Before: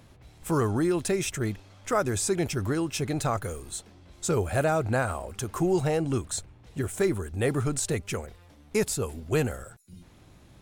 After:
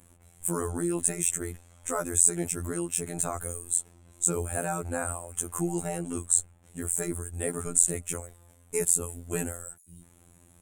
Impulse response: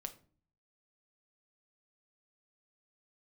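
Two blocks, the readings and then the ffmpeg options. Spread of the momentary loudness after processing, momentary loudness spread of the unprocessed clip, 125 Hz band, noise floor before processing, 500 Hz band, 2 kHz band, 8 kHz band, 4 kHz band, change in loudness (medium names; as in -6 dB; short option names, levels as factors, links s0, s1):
12 LU, 10 LU, -7.5 dB, -55 dBFS, -6.5 dB, -6.5 dB, +9.0 dB, -10.0 dB, +0.5 dB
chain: -af "afftfilt=real='hypot(re,im)*cos(PI*b)':imag='0':win_size=2048:overlap=0.75,acontrast=86,highshelf=f=6400:t=q:w=3:g=10.5,volume=0.355"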